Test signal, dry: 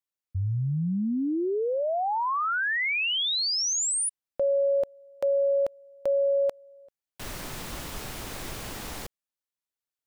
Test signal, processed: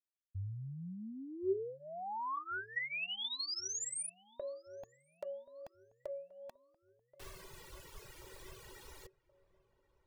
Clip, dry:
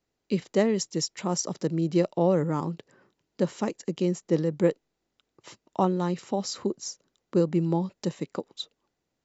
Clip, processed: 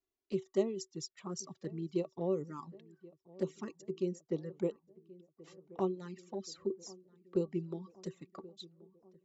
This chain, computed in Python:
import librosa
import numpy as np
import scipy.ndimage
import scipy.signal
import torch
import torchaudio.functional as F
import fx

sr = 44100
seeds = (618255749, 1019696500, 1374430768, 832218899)

p1 = fx.dereverb_blind(x, sr, rt60_s=1.6)
p2 = fx.comb_fb(p1, sr, f0_hz=380.0, decay_s=0.17, harmonics='odd', damping=0.5, mix_pct=80)
p3 = fx.env_flanger(p2, sr, rest_ms=2.9, full_db=-32.0)
p4 = p3 + fx.echo_filtered(p3, sr, ms=1079, feedback_pct=62, hz=1300.0, wet_db=-20.5, dry=0)
y = p4 * librosa.db_to_amplitude(1.5)